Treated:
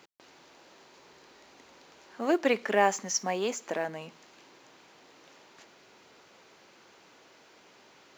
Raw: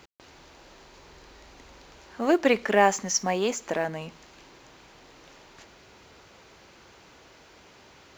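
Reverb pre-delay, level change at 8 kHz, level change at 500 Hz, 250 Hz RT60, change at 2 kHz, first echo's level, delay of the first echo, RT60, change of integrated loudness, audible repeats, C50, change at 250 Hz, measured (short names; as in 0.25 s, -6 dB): none, -4.0 dB, -4.0 dB, none, -4.0 dB, none, none, none, -4.0 dB, none, none, -5.0 dB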